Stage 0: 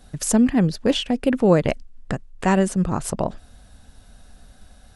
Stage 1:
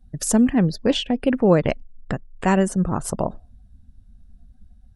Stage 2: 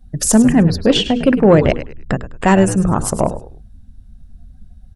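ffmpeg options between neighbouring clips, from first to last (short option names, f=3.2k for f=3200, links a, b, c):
-af "afftdn=nr=24:nf=-43"
-filter_complex "[0:a]bandreject=f=60:t=h:w=6,bandreject=f=120:t=h:w=6,bandreject=f=180:t=h:w=6,bandreject=f=240:t=h:w=6,bandreject=f=300:t=h:w=6,bandreject=f=360:t=h:w=6,bandreject=f=420:t=h:w=6,bandreject=f=480:t=h:w=6,asplit=4[a][b][c][d];[b]adelay=103,afreqshift=-81,volume=-13dB[e];[c]adelay=206,afreqshift=-162,volume=-23.5dB[f];[d]adelay=309,afreqshift=-243,volume=-33.9dB[g];[a][e][f][g]amix=inputs=4:normalize=0,acontrast=69,volume=1.5dB"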